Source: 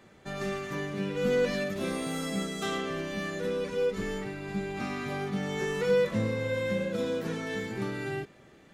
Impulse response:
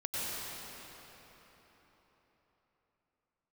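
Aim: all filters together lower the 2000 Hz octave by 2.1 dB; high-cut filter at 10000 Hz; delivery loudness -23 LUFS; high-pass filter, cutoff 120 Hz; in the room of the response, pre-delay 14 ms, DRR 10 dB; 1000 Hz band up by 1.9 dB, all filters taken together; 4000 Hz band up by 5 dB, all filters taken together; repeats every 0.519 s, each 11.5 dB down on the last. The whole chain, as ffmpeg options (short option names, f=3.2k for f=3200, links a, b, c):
-filter_complex "[0:a]highpass=120,lowpass=10k,equalizer=f=1k:t=o:g=3.5,equalizer=f=2k:t=o:g=-5.5,equalizer=f=4k:t=o:g=8,aecho=1:1:519|1038|1557:0.266|0.0718|0.0194,asplit=2[a][b];[1:a]atrim=start_sample=2205,adelay=14[c];[b][c]afir=irnorm=-1:irlink=0,volume=-16dB[d];[a][d]amix=inputs=2:normalize=0,volume=7.5dB"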